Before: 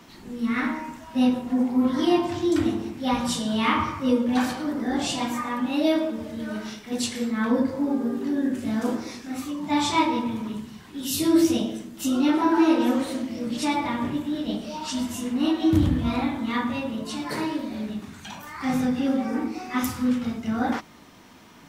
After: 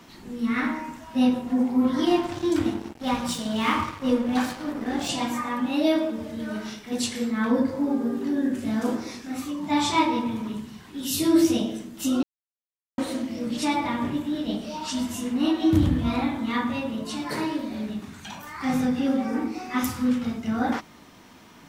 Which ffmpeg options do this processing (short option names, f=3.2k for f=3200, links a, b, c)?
-filter_complex "[0:a]asettb=1/sr,asplit=3[a][b][c];[a]atrim=end=2.064[d];[b]atrim=start=2.06:end=5.09,asetpts=PTS-STARTPTS,afade=t=in:d=0.004:c=qsin,afade=t=out:st=3.026:d=0.004:c=qsin,aeval=exprs='sgn(val(0))*max(abs(val(0))-0.0158,0)':c=same[e];[c]atrim=start=5.086[f];[d][e]acrossfade=d=0.004:c1=hsin:c2=qsin[g];[g][f]acrossfade=d=0.004:c1=qsin:c2=hsin,asplit=3[h][i][j];[h]atrim=end=12.23,asetpts=PTS-STARTPTS,afade=t=out:st=12.226:d=0.004:c=hsin[k];[i]atrim=start=12.23:end=12.98,asetpts=PTS-STARTPTS,volume=0[l];[j]atrim=start=12.98,asetpts=PTS-STARTPTS,afade=t=in:d=0.004:c=hsin[m];[k][l][m]concat=n=3:v=0:a=1"